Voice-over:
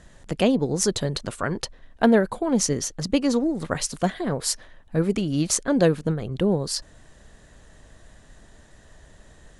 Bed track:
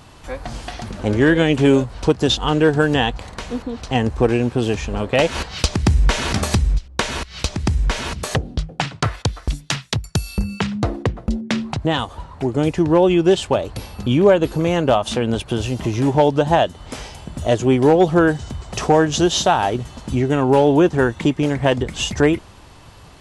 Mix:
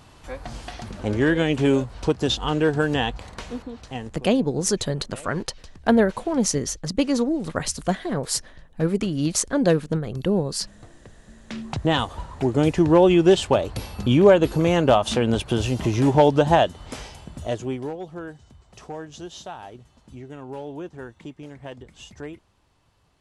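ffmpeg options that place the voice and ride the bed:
ffmpeg -i stem1.wav -i stem2.wav -filter_complex "[0:a]adelay=3850,volume=0dB[link_01];[1:a]volume=21.5dB,afade=type=out:start_time=3.43:duration=0.81:silence=0.0749894,afade=type=in:start_time=11.43:duration=0.49:silence=0.0446684,afade=type=out:start_time=16.45:duration=1.51:silence=0.1[link_02];[link_01][link_02]amix=inputs=2:normalize=0" out.wav

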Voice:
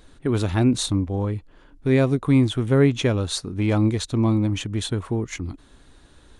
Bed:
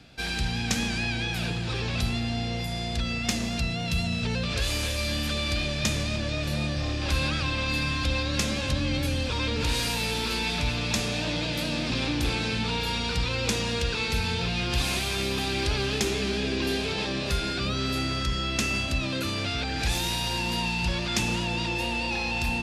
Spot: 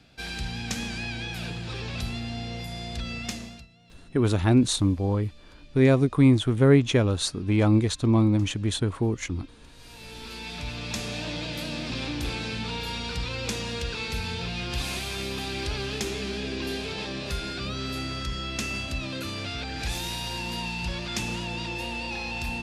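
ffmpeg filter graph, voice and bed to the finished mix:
ffmpeg -i stem1.wav -i stem2.wav -filter_complex "[0:a]adelay=3900,volume=-0.5dB[link_01];[1:a]volume=18.5dB,afade=type=out:start_time=3.21:duration=0.46:silence=0.0749894,afade=type=in:start_time=9.77:duration=1.36:silence=0.0707946[link_02];[link_01][link_02]amix=inputs=2:normalize=0" out.wav

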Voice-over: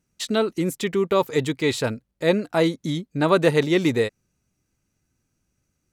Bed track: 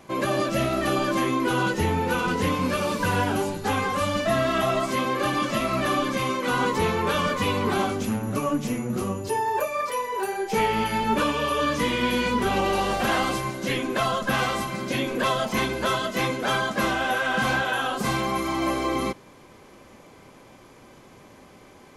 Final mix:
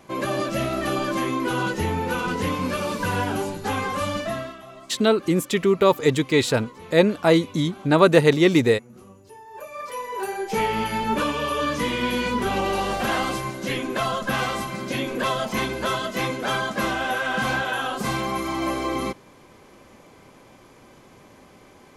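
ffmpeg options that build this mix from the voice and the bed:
ffmpeg -i stem1.wav -i stem2.wav -filter_complex "[0:a]adelay=4700,volume=3dB[link_01];[1:a]volume=18dB,afade=type=out:start_time=4.11:duration=0.46:silence=0.11885,afade=type=in:start_time=9.49:duration=0.79:silence=0.112202[link_02];[link_01][link_02]amix=inputs=2:normalize=0" out.wav

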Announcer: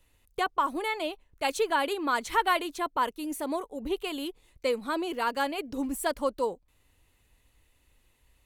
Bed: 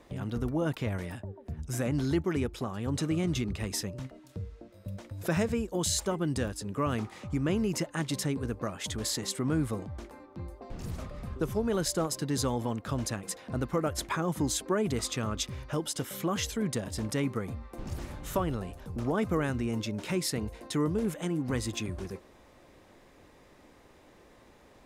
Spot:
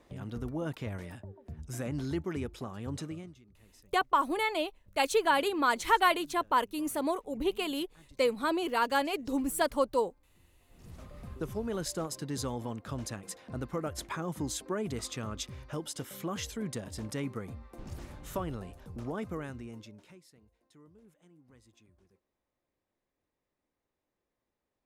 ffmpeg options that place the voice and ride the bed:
ffmpeg -i stem1.wav -i stem2.wav -filter_complex "[0:a]adelay=3550,volume=0.5dB[link_01];[1:a]volume=17dB,afade=type=out:start_time=2.89:duration=0.46:silence=0.0749894,afade=type=in:start_time=10.67:duration=0.57:silence=0.0749894,afade=type=out:start_time=18.84:duration=1.38:silence=0.0630957[link_02];[link_01][link_02]amix=inputs=2:normalize=0" out.wav

